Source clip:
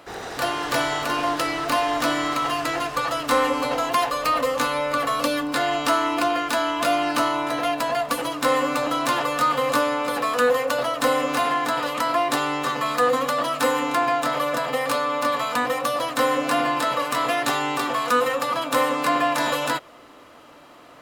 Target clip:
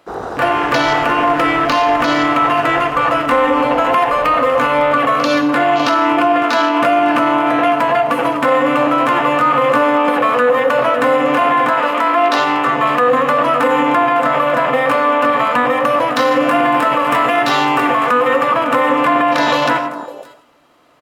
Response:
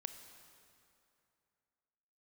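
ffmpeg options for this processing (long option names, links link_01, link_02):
-filter_complex "[0:a]asettb=1/sr,asplit=3[link_01][link_02][link_03];[link_01]atrim=end=11.694[link_04];[link_02]atrim=start=11.69:end=12.68,asetpts=PTS-STARTPTS,afade=type=in:duration=0.004:curve=qsin,afade=type=out:start_time=0.986:duration=0.004:curve=qsin,highpass=frequency=330:poles=1[link_05];[link_03]atrim=start=12.676[link_06];[link_04][link_05]acrossfade=duration=0.004:curve1=hsin:curve2=qsin[link_07];[link_07][link_06]acrossfade=duration=0.004:curve1=qsin:curve2=hsin,asettb=1/sr,asplit=3[link_08][link_09][link_10];[link_08]atrim=end=16.124[link_11];[link_09]atrim=start=16.12:end=17.95,asetpts=PTS-STARTPTS,afade=type=in:duration=0.004:curve=qsin,afade=type=out:start_time=1.826:duration=0.004:curve=qsin,highshelf=frequency=7300:gain=7[link_12];[link_10]atrim=start=17.946[link_13];[link_11][link_12]acrossfade=duration=0.004:curve1=hsin:curve2=qsin[link_14];[link_14][link_13]acrossfade=duration=0.004:curve1=qsin:curve2=hsin,aecho=1:1:555:0.224,afwtdn=0.0282[link_15];[1:a]atrim=start_sample=2205,afade=type=out:start_time=0.23:duration=0.01,atrim=end_sample=10584[link_16];[link_15][link_16]afir=irnorm=-1:irlink=0,alimiter=level_in=18.5dB:limit=-1dB:release=50:level=0:latency=1,volume=-4dB"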